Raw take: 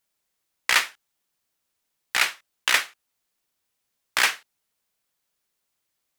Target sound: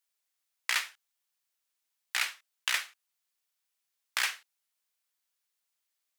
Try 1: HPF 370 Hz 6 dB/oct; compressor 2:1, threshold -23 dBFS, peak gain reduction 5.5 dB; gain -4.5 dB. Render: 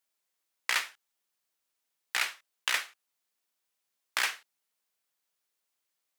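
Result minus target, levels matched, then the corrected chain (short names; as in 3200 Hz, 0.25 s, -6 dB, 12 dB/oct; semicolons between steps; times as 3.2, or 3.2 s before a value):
500 Hz band +5.5 dB
HPF 1300 Hz 6 dB/oct; compressor 2:1, threshold -23 dBFS, peak gain reduction 5 dB; gain -4.5 dB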